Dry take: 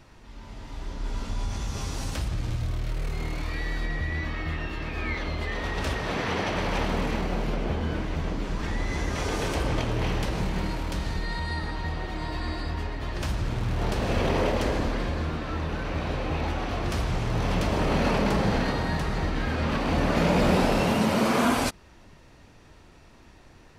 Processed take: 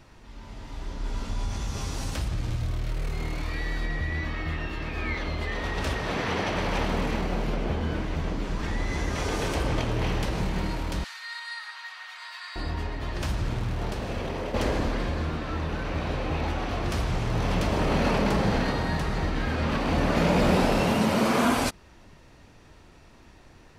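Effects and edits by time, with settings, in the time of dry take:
11.04–12.56 HPF 1200 Hz 24 dB/oct
13.52–14.54 fade out quadratic, to -8 dB

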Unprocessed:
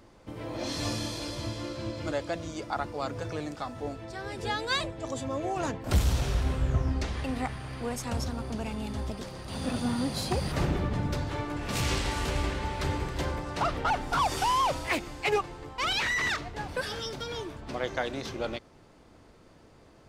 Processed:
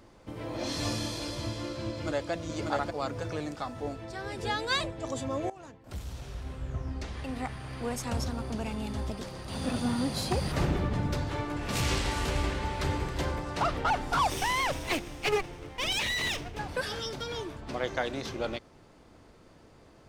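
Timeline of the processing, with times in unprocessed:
1.9–2.31 echo throw 0.59 s, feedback 10%, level -2.5 dB
5.5–7.89 fade in quadratic, from -17 dB
14.3–16.59 minimum comb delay 0.33 ms

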